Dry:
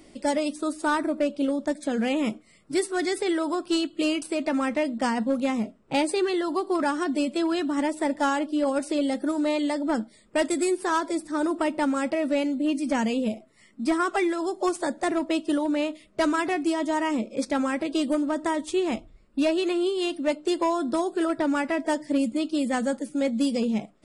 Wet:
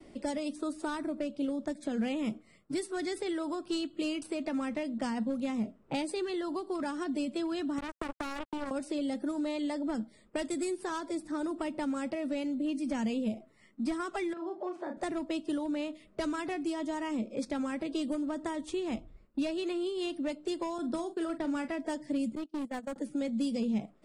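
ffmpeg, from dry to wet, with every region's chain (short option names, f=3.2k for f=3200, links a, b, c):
-filter_complex "[0:a]asettb=1/sr,asplit=3[a][b][c];[a]atrim=end=7.784[d];[b]atrim=start=7.78:end=8.71,asetpts=PTS-STARTPTS,afade=t=in:d=0.004:c=qsin,afade=t=out:st=0.926:d=0.004:c=qsin,lowshelf=f=130:g=11.5,acompressor=threshold=-26dB:ratio=4:attack=3.2:release=140:knee=1:detection=peak,acrusher=bits=3:mix=0:aa=0.5[e];[c]atrim=start=8.706[f];[d][e]acrossfade=d=0.004:c1=hsin:c2=qsin[g];[g][f]acrossfade=d=0.004:c1=qsin:c2=hsin,asettb=1/sr,asplit=3[h][i][j];[h]atrim=end=14.334[k];[i]atrim=start=14.33:end=14.97,asetpts=PTS-STARTPTS,afade=t=in:d=0.004:c=qsin,afade=t=out:st=0.636:d=0.004:c=qsin,acompressor=threshold=-34dB:ratio=2.5:attack=3.2:release=140:knee=1:detection=peak,highpass=200,lowpass=2.6k,asplit=2[l][m];[m]adelay=36,volume=-5.5dB[n];[l][n]amix=inputs=2:normalize=0,atrim=end_sample=28224[o];[j]atrim=start=14.966[p];[k][o]acrossfade=d=0.004:c1=hsin:c2=qsin[q];[q][p]acrossfade=d=0.004:c1=qsin:c2=hsin,asettb=1/sr,asplit=3[r][s][t];[r]atrim=end=20.784[u];[s]atrim=start=20.78:end=21.68,asetpts=PTS-STARTPTS,afade=t=in:d=0.004:c=qsin,afade=t=out:st=0.896:d=0.004:c=qsin,agate=range=-33dB:threshold=-31dB:ratio=3:release=100:detection=peak,asplit=2[v][w];[w]adelay=42,volume=-12dB[x];[v][x]amix=inputs=2:normalize=0,atrim=end_sample=39690[y];[t]atrim=start=21.676[z];[u][y]acrossfade=d=0.004:c1=hsin:c2=qsin[aa];[aa][z]acrossfade=d=0.004:c1=qsin:c2=hsin,asettb=1/sr,asplit=3[ab][ac][ad];[ab]atrim=end=22.354[ae];[ac]atrim=start=22.35:end=22.96,asetpts=PTS-STARTPTS,afade=t=in:d=0.004:c=qsin,afade=t=out:st=0.606:d=0.004:c=qsin,agate=range=-29dB:threshold=-25dB:ratio=16:release=100:detection=peak,asoftclip=type=hard:threshold=-29.5dB[af];[ad]atrim=start=22.956[ag];[ae][af]acrossfade=d=0.004:c1=hsin:c2=qsin[ah];[ah][ag]acrossfade=d=0.004:c1=qsin:c2=hsin,agate=range=-33dB:threshold=-53dB:ratio=3:detection=peak,highshelf=f=3.1k:g=-10,acrossover=split=200|3000[ai][aj][ak];[aj]acompressor=threshold=-33dB:ratio=6[al];[ai][al][ak]amix=inputs=3:normalize=0,volume=-1dB"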